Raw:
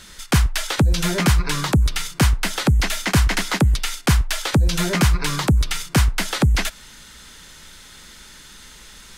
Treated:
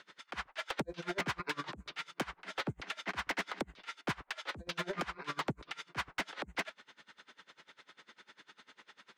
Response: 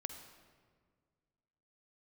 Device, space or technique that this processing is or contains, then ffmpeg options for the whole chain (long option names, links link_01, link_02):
helicopter radio: -af "highpass=350,lowpass=2600,aeval=exprs='val(0)*pow(10,-26*(0.5-0.5*cos(2*PI*10*n/s))/20)':channel_layout=same,asoftclip=type=hard:threshold=-25dB,volume=-4dB"